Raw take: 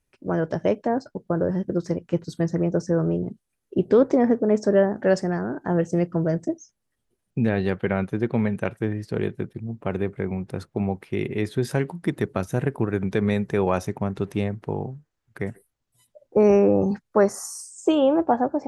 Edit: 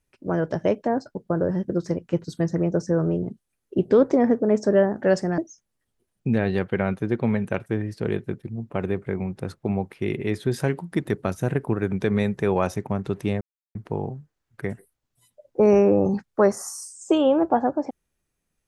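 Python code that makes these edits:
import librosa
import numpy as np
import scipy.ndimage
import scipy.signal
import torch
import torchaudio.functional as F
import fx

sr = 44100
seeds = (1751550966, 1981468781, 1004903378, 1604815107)

y = fx.edit(x, sr, fx.cut(start_s=5.38, length_s=1.11),
    fx.insert_silence(at_s=14.52, length_s=0.34), tone=tone)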